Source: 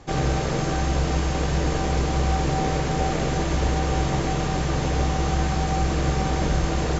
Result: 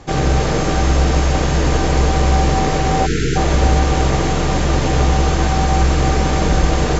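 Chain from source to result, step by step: split-band echo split 470 Hz, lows 91 ms, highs 0.306 s, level -6 dB; spectral delete 3.06–3.36, 480–1300 Hz; gain +6.5 dB

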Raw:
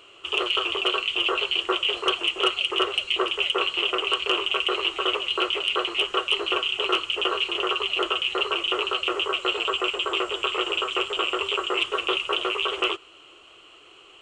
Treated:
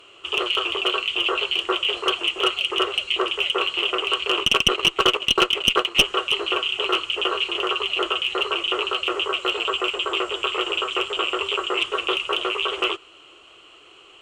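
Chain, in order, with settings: 4.37–6.04 transient shaper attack +12 dB, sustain -9 dB; one-sided clip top -13.5 dBFS; gain +1.5 dB

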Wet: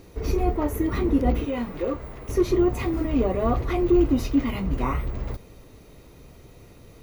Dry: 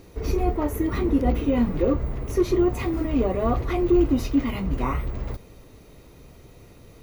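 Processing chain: 1.45–2.29 low shelf 360 Hz -12 dB

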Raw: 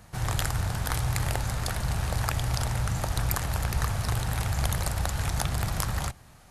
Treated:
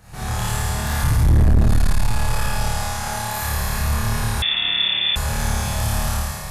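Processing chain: compressor 5:1, threshold -31 dBFS, peak gain reduction 9.5 dB; 1.02–1.6 tilt -4.5 dB/oct; 2.66–3.37 HPF 380 Hz 6 dB/oct; on a send: flutter echo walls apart 4.6 m, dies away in 0.98 s; on the sum: Schroeder reverb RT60 2.4 s, combs from 28 ms, DRR -9 dB; soft clip -10.5 dBFS, distortion -5 dB; 4.42–5.16 inverted band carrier 3500 Hz

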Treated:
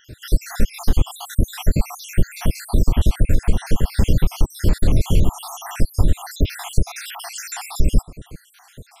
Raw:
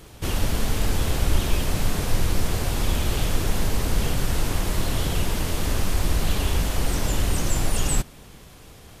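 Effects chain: random spectral dropouts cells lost 71%; compressor 5:1, threshold -23 dBFS, peak gain reduction 9 dB; low shelf 460 Hz +10.5 dB; gain +4 dB

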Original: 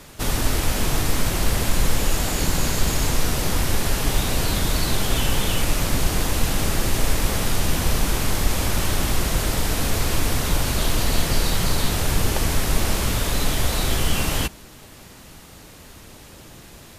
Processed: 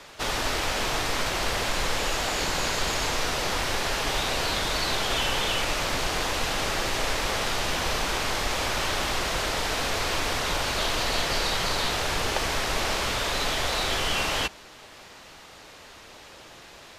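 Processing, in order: three-band isolator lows -14 dB, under 420 Hz, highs -15 dB, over 6300 Hz; gain +1.5 dB

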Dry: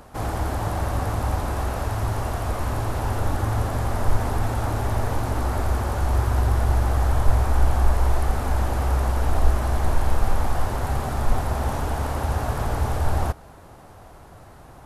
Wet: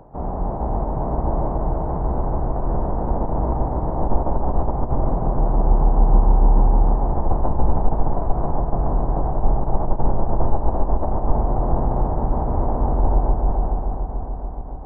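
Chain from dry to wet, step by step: LPF 1100 Hz 24 dB/oct; multi-head echo 0.143 s, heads all three, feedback 71%, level -8 dB; formant-preserving pitch shift -10 st; gain +3 dB

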